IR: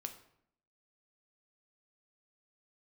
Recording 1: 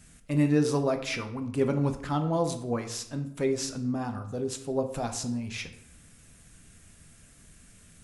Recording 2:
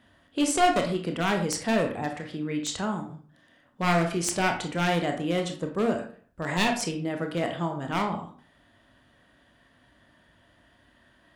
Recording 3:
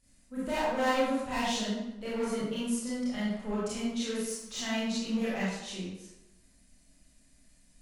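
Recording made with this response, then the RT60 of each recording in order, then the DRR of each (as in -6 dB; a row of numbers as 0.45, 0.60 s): 1; 0.70, 0.45, 0.90 s; 6.0, 3.5, -9.5 dB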